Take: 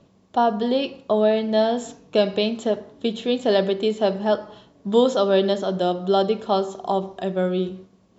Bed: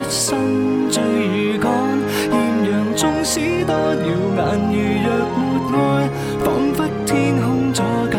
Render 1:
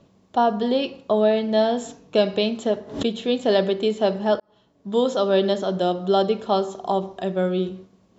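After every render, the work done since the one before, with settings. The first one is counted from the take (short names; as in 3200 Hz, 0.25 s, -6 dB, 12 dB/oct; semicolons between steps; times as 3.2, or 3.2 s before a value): 2.7–3.22 backwards sustainer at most 120 dB/s; 4.4–5.68 fade in equal-power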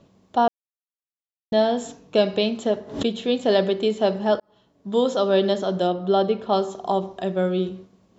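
0.48–1.52 mute; 5.87–6.53 air absorption 140 m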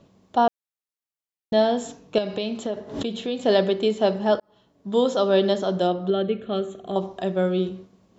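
2.18–3.43 compressor 3:1, threshold -24 dBFS; 6.1–6.96 fixed phaser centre 2200 Hz, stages 4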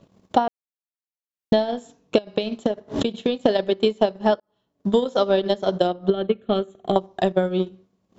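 transient shaper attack +12 dB, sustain -12 dB; compressor 10:1, threshold -14 dBFS, peak gain reduction 10.5 dB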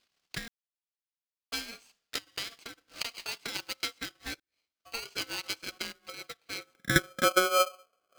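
band-pass sweep 3800 Hz -> 390 Hz, 6.56–7.11; polarity switched at an audio rate 920 Hz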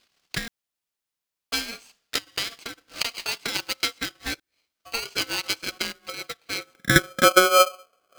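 gain +8.5 dB; limiter -3 dBFS, peak gain reduction 2 dB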